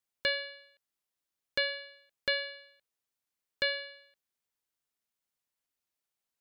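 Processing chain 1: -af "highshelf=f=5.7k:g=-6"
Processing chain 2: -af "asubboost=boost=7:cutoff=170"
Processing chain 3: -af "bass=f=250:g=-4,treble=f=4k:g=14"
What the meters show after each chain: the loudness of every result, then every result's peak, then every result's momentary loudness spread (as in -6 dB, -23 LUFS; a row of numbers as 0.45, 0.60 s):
-34.5, -34.0, -29.5 LUFS; -16.5, -15.5, -11.0 dBFS; 17, 18, 17 LU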